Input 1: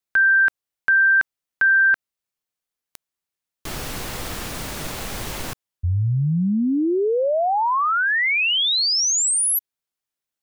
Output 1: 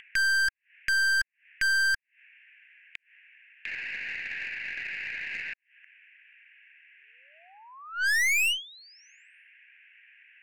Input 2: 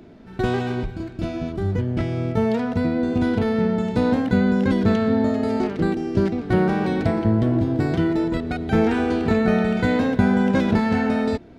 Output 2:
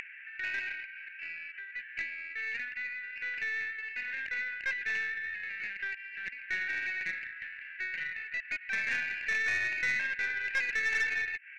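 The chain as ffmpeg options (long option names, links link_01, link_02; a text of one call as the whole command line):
ffmpeg -i in.wav -af "asuperpass=centerf=2100:order=12:qfactor=1.8,aeval=exprs='(tanh(31.6*val(0)+0.3)-tanh(0.3))/31.6':channel_layout=same,acompressor=mode=upward:threshold=-48dB:ratio=4:attack=13:release=121:knee=2.83:detection=peak,volume=6.5dB" out.wav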